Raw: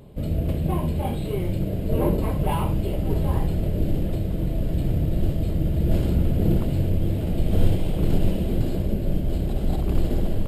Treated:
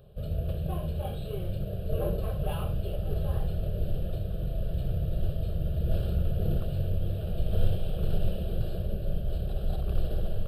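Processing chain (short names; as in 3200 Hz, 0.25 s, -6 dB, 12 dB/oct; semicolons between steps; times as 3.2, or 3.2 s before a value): fixed phaser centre 1400 Hz, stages 8; gain -5 dB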